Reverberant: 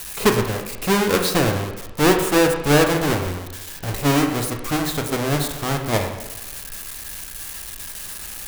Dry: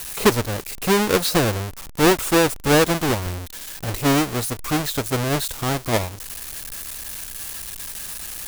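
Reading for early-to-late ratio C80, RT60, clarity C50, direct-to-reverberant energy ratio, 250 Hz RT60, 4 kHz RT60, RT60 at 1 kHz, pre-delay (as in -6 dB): 9.0 dB, 1.0 s, 6.5 dB, 3.5 dB, 0.95 s, 0.95 s, 1.0 s, 9 ms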